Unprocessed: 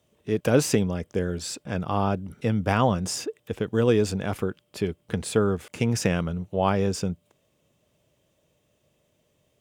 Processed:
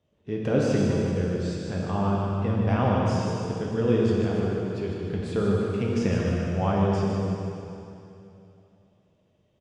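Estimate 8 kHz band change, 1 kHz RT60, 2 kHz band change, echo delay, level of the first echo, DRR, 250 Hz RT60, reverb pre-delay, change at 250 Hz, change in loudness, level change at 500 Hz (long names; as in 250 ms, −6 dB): −12.0 dB, 2.8 s, −3.5 dB, 152 ms, −6.5 dB, −4.0 dB, 2.9 s, 9 ms, +1.5 dB, 0.0 dB, −0.5 dB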